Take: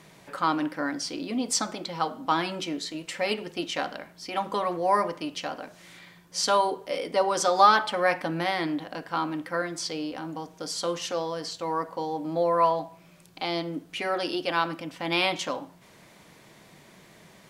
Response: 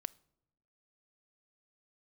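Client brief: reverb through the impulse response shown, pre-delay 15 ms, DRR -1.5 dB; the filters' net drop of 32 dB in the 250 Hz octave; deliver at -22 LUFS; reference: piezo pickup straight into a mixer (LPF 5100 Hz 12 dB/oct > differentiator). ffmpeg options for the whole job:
-filter_complex "[0:a]equalizer=f=250:t=o:g=-7,asplit=2[a][b];[1:a]atrim=start_sample=2205,adelay=15[c];[b][c]afir=irnorm=-1:irlink=0,volume=4dB[d];[a][d]amix=inputs=2:normalize=0,lowpass=5.1k,aderivative,volume=15dB"

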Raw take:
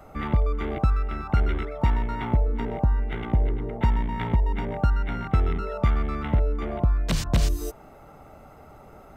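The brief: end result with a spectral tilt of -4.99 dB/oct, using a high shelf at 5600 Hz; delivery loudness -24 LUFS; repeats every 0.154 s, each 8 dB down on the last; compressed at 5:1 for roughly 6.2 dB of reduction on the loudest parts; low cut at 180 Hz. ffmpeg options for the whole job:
-af "highpass=180,highshelf=f=5.6k:g=5,acompressor=threshold=-30dB:ratio=5,aecho=1:1:154|308|462|616|770:0.398|0.159|0.0637|0.0255|0.0102,volume=10.5dB"

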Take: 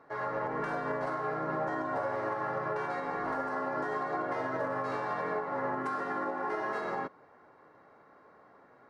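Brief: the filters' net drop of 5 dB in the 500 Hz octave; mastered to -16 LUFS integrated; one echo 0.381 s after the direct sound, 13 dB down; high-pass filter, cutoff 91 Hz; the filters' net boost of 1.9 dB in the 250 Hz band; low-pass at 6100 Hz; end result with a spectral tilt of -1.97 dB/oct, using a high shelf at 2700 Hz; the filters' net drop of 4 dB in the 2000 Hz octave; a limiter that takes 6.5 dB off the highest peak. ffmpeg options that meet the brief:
-af "highpass=91,lowpass=6.1k,equalizer=f=250:t=o:g=5,equalizer=f=500:t=o:g=-7.5,equalizer=f=2k:t=o:g=-6.5,highshelf=f=2.7k:g=4.5,alimiter=level_in=7dB:limit=-24dB:level=0:latency=1,volume=-7dB,aecho=1:1:381:0.224,volume=23.5dB"

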